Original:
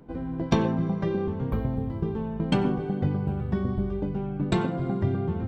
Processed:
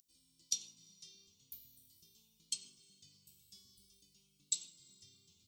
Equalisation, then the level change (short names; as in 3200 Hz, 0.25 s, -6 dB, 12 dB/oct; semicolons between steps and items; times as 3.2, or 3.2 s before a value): inverse Chebyshev high-pass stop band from 1800 Hz, stop band 60 dB; +13.5 dB